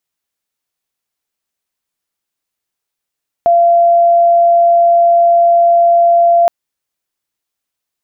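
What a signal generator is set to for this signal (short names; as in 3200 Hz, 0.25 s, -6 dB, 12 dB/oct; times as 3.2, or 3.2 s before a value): tone sine 686 Hz -5.5 dBFS 3.02 s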